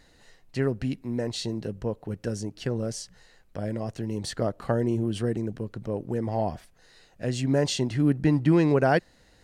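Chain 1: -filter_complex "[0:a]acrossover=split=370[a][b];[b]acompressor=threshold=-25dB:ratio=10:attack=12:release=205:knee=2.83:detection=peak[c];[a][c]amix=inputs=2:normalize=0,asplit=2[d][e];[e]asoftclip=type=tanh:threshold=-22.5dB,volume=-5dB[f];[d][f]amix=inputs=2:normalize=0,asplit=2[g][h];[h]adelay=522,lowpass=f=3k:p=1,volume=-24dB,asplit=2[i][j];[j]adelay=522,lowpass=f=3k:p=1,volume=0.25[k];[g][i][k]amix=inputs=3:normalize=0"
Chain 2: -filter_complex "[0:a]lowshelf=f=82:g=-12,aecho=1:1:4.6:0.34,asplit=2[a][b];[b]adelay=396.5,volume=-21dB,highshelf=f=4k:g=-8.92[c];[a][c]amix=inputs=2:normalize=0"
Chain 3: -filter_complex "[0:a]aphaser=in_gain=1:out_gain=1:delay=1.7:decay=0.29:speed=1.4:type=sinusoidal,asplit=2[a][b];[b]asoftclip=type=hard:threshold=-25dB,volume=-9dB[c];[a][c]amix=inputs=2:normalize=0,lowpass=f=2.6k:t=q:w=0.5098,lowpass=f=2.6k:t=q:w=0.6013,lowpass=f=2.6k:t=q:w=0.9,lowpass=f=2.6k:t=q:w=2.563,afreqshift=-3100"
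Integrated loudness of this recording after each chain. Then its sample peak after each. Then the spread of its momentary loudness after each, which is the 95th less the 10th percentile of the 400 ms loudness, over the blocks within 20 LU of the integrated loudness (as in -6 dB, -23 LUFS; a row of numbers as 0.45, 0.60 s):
-25.5, -29.0, -21.0 LUFS; -9.5, -10.5, -7.5 dBFS; 11, 11, 11 LU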